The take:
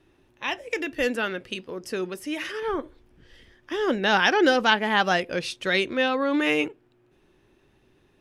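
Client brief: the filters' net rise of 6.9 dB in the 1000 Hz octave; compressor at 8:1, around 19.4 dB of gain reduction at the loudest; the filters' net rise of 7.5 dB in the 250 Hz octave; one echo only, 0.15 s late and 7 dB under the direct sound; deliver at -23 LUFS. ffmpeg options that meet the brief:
-af "equalizer=f=250:t=o:g=9,equalizer=f=1k:t=o:g=8.5,acompressor=threshold=-31dB:ratio=8,aecho=1:1:150:0.447,volume=11dB"

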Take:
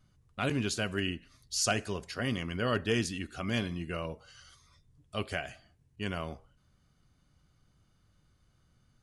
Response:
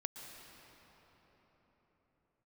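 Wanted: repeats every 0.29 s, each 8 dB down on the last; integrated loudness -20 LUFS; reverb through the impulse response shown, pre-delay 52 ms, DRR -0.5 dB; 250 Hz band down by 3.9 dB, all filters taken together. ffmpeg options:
-filter_complex "[0:a]equalizer=f=250:t=o:g=-5,aecho=1:1:290|580|870|1160|1450:0.398|0.159|0.0637|0.0255|0.0102,asplit=2[a][b];[1:a]atrim=start_sample=2205,adelay=52[c];[b][c]afir=irnorm=-1:irlink=0,volume=2dB[d];[a][d]amix=inputs=2:normalize=0,volume=11.5dB"

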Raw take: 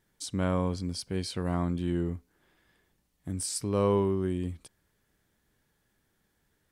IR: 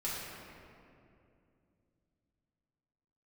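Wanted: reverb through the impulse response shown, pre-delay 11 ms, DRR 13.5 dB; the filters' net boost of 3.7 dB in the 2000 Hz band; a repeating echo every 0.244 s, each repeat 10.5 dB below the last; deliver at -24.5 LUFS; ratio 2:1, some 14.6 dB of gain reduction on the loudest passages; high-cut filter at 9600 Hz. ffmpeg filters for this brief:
-filter_complex "[0:a]lowpass=9.6k,equalizer=f=2k:t=o:g=5,acompressor=threshold=-50dB:ratio=2,aecho=1:1:244|488|732:0.299|0.0896|0.0269,asplit=2[a][b];[1:a]atrim=start_sample=2205,adelay=11[c];[b][c]afir=irnorm=-1:irlink=0,volume=-17.5dB[d];[a][d]amix=inputs=2:normalize=0,volume=19dB"

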